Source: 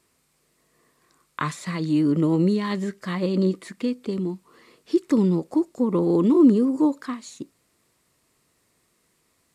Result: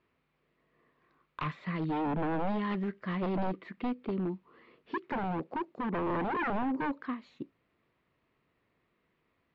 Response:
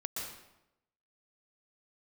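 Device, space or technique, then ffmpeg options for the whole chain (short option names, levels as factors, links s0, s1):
synthesiser wavefolder: -filter_complex "[0:a]asettb=1/sr,asplit=3[s0][s1][s2];[s0]atrim=end=4.984[s3];[s1]atrim=start=4.98:end=6.43,asetpts=PTS-STARTPTS,afade=t=in:d=0.004:c=qsin,afade=t=out:st=1.446:d=0.004:c=qsin,highpass=91[s4];[s2]atrim=start=6.426[s5];[s3][s4]acrossfade=d=0.004:c1=hsin:c2=qsin[s6];[s6][s5]acrossfade=d=0.004:c1=qsin:c2=hsin,aeval=exprs='0.0891*(abs(mod(val(0)/0.0891+3,4)-2)-1)':c=same,lowpass=f=3000:w=0.5412,lowpass=f=3000:w=1.3066,volume=0.531"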